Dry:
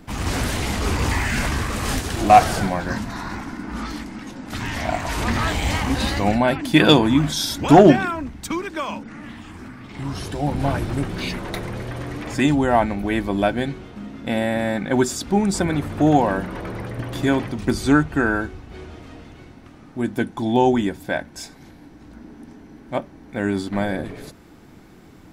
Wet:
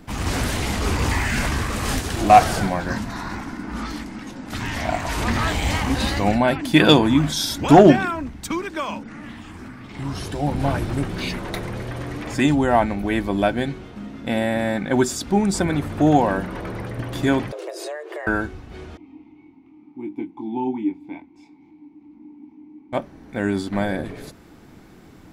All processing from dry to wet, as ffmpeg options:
-filter_complex "[0:a]asettb=1/sr,asplit=3[s0][s1][s2];[s0]atrim=end=17.524[s3];[s1]atrim=start=17.52:end=18.27,asetpts=PTS-STARTPTS,afade=t=in:d=0.004:c=qsin,afade=t=out:st=0.746:d=0.004:c=qsin,acompressor=threshold=0.0398:ratio=12:attack=3.2:release=140:knee=1:detection=peak,afreqshift=300[s4];[s2]atrim=start=18.266[s5];[s3][s4]acrossfade=d=0.004:c1=hsin:c2=qsin[s6];[s6][s5]acrossfade=d=0.004:c1=qsin:c2=hsin,asettb=1/sr,asplit=3[s7][s8][s9];[s7]atrim=end=18.974[s10];[s8]atrim=start=18.97:end=22.93,asetpts=PTS-STARTPTS,afade=t=in:d=0.004:c=qsin,afade=t=out:st=3.956:d=0.004:c=qsin,asplit=3[s11][s12][s13];[s11]bandpass=f=300:t=q:w=8,volume=1[s14];[s12]bandpass=f=870:t=q:w=8,volume=0.501[s15];[s13]bandpass=f=2240:t=q:w=8,volume=0.355[s16];[s14][s15][s16]amix=inputs=3:normalize=0,lowshelf=f=240:g=5.5,asplit=2[s17][s18];[s18]adelay=23,volume=0.596[s19];[s17][s19]amix=inputs=2:normalize=0,atrim=end_sample=174636[s20];[s9]atrim=start=22.926[s21];[s10][s20]acrossfade=d=0.004:c1=hsin:c2=qsin[s22];[s22][s21]acrossfade=d=0.004:c1=qsin:c2=hsin"

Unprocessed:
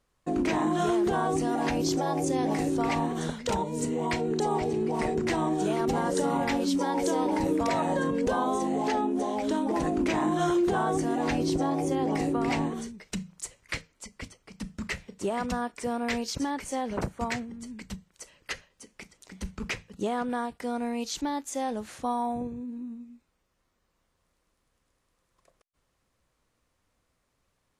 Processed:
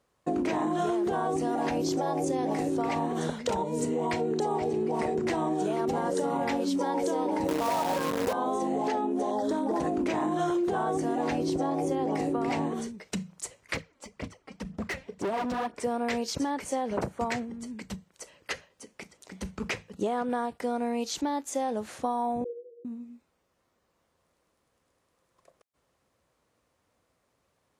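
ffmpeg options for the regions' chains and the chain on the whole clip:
-filter_complex "[0:a]asettb=1/sr,asplit=3[s0][s1][s2];[s0]atrim=end=7.484[s3];[s1]atrim=start=7.48:end=8.33,asetpts=PTS-STARTPTS,afade=t=in:d=0.004:c=qsin,afade=t=out:st=0.846:d=0.004:c=qsin,equalizer=f=920:t=o:w=0.78:g=7.5,acrusher=bits=5:dc=4:mix=0:aa=0.000001[s4];[s2]atrim=start=8.326[s5];[s3][s4]acrossfade=d=0.004:c1=hsin:c2=qsin[s6];[s6][s5]acrossfade=d=0.004:c1=qsin:c2=hsin,asettb=1/sr,asplit=3[s7][s8][s9];[s7]atrim=end=9.314[s10];[s8]atrim=start=9.31:end=9.8,asetpts=PTS-STARTPTS,afade=t=in:d=0.004:c=qsin,afade=t=out:st=0.486:d=0.004:c=qsin,asuperstop=centerf=2500:order=20:qfactor=2,asoftclip=type=hard:threshold=0.0841[s11];[s9]atrim=start=9.796[s12];[s10][s11]acrossfade=d=0.004:c1=hsin:c2=qsin[s13];[s13][s12]acrossfade=d=0.004:c1=qsin:c2=hsin,asettb=1/sr,asplit=3[s14][s15][s16];[s14]atrim=end=13.754[s17];[s15]atrim=start=13.75:end=15.8,asetpts=PTS-STARTPTS,afade=t=in:d=0.004:c=qsin,afade=t=out:st=2.046:d=0.004:c=qsin,lowpass=f=3300:p=1,aphaser=in_gain=1:out_gain=1:delay=3.8:decay=0.58:speed=2:type=sinusoidal,volume=33.5,asoftclip=hard,volume=0.0299[s18];[s16]atrim=start=15.796[s19];[s17][s18]acrossfade=d=0.004:c1=hsin:c2=qsin[s20];[s20][s19]acrossfade=d=0.004:c1=qsin:c2=hsin,asettb=1/sr,asplit=3[s21][s22][s23];[s21]atrim=end=22.444[s24];[s22]atrim=start=22.44:end=22.85,asetpts=PTS-STARTPTS,afade=t=in:d=0.004:c=qsin,afade=t=out:st=0.406:d=0.004:c=qsin,asuperpass=centerf=430:order=20:qfactor=2.2,asplit=2[s25][s26];[s26]adelay=42,volume=0.668[s27];[s25][s27]amix=inputs=2:normalize=0,atrim=end_sample=18081[s28];[s23]atrim=start=22.846[s29];[s24][s28]acrossfade=d=0.004:c1=hsin:c2=qsin[s30];[s30][s29]acrossfade=d=0.004:c1=qsin:c2=hsin,highpass=68,equalizer=f=570:w=0.72:g=5.5,acompressor=threshold=0.0562:ratio=6"

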